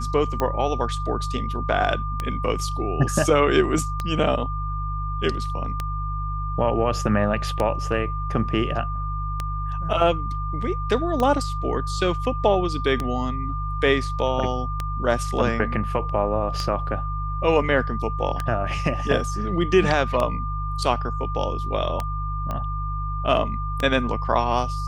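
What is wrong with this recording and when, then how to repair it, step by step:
hum 50 Hz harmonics 3 -28 dBFS
tick 33 1/3 rpm -11 dBFS
tone 1200 Hz -30 dBFS
22.51 pop -16 dBFS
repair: de-click; notch 1200 Hz, Q 30; de-hum 50 Hz, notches 3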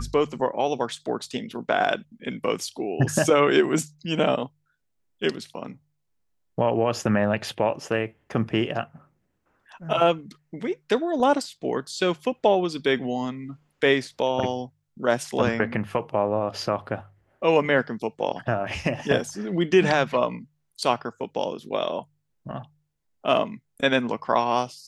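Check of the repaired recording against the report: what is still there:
none

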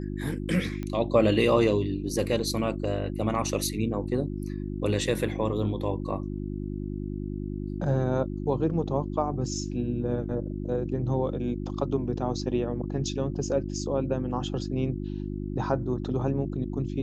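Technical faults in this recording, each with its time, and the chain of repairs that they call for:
hum 50 Hz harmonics 7 -33 dBFS
0.83 pop -22 dBFS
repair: de-click; de-hum 50 Hz, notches 7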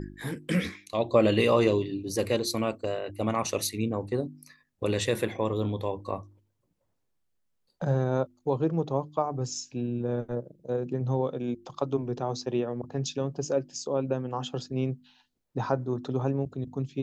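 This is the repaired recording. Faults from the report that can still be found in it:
none

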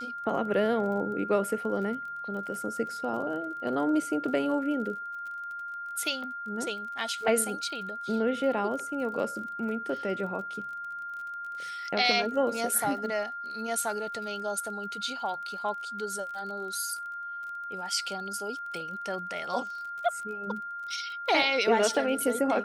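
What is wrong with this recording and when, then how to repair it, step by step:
crackle 31/s -39 dBFS
tone 1400 Hz -35 dBFS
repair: de-click; notch 1400 Hz, Q 30

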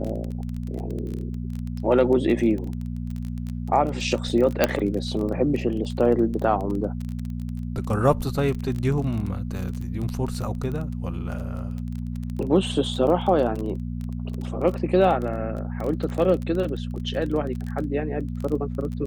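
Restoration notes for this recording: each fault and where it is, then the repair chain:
crackle 23/s -28 dBFS
hum 60 Hz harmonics 4 -30 dBFS
4.64 pop -3 dBFS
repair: de-click; de-hum 60 Hz, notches 4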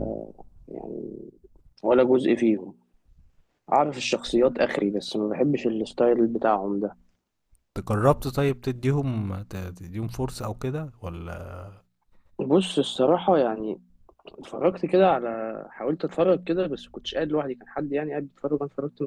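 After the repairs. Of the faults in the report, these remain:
none

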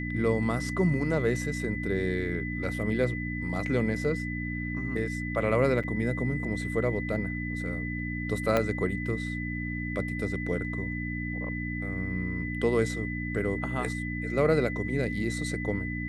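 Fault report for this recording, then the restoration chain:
hum 60 Hz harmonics 5 -34 dBFS
tone 2000 Hz -36 dBFS
5.83–5.84 gap 6.4 ms
8.57 pop -12 dBFS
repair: de-click; notch 2000 Hz, Q 30; de-hum 60 Hz, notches 5; interpolate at 5.83, 6.4 ms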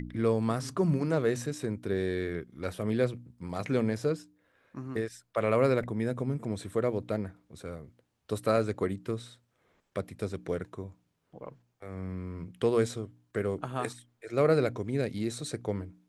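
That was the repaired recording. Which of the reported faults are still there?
8.57 pop

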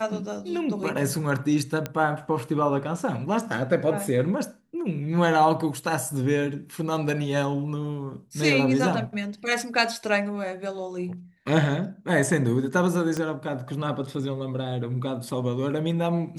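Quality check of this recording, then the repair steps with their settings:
1.86 pop -14 dBFS
13.17 pop -16 dBFS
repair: de-click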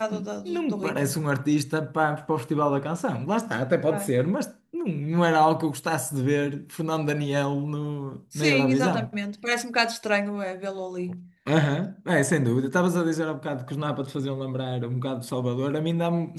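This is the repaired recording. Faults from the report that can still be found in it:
13.17 pop

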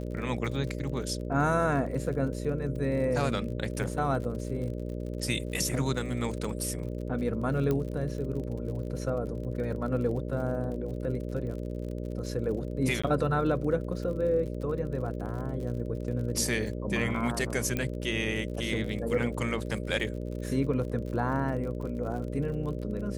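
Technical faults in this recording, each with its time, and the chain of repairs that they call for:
buzz 60 Hz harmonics 10 -35 dBFS
crackle 48/s -38 dBFS
7.71 pop -17 dBFS
13.02–13.04 gap 15 ms
17.77 pop -16 dBFS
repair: de-click; de-hum 60 Hz, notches 10; interpolate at 13.02, 15 ms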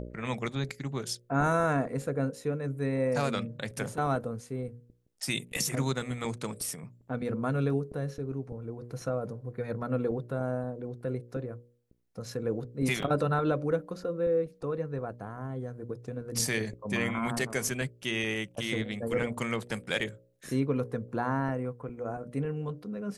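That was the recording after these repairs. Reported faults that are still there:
7.71 pop

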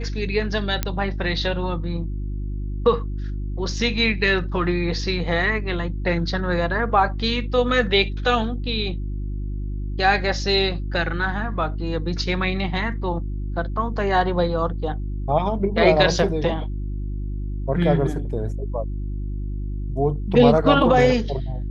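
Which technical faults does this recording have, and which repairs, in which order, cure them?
hum 50 Hz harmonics 7 -27 dBFS
0.83 pop -7 dBFS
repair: de-click; de-hum 50 Hz, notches 7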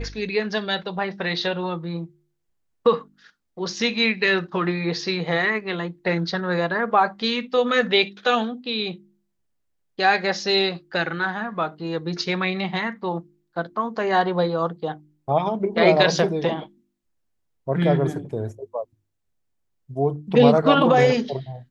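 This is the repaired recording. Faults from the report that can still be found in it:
none

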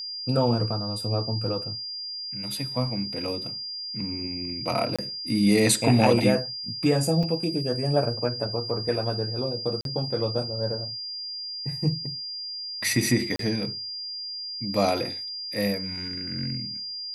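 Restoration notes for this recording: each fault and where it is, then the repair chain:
tone 4800 Hz -32 dBFS
4.96–4.99 gap 26 ms
7.23 gap 4.4 ms
9.81–9.85 gap 42 ms
13.36–13.39 gap 33 ms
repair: notch 4800 Hz, Q 30; interpolate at 4.96, 26 ms; interpolate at 7.23, 4.4 ms; interpolate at 9.81, 42 ms; interpolate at 13.36, 33 ms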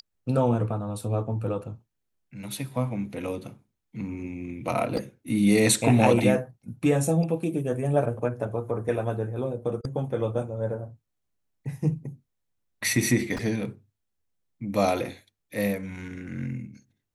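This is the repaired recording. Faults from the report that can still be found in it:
none

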